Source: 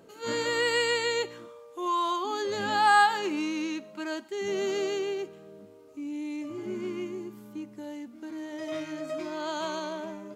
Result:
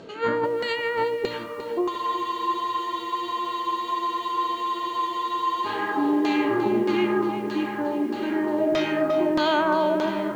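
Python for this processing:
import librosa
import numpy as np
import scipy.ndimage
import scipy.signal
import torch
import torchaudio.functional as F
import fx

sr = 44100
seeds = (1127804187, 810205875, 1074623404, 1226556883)

p1 = x + fx.echo_diffused(x, sr, ms=1659, feedback_pct=50, wet_db=-12, dry=0)
p2 = fx.filter_lfo_lowpass(p1, sr, shape='saw_down', hz=1.6, low_hz=440.0, high_hz=4900.0, q=1.6)
p3 = fx.over_compress(p2, sr, threshold_db=-32.0, ratio=-1.0)
p4 = fx.spec_freeze(p3, sr, seeds[0], at_s=1.92, hold_s=3.73)
p5 = fx.echo_crushed(p4, sr, ms=351, feedback_pct=55, bits=9, wet_db=-11)
y = p5 * 10.0 ** (8.0 / 20.0)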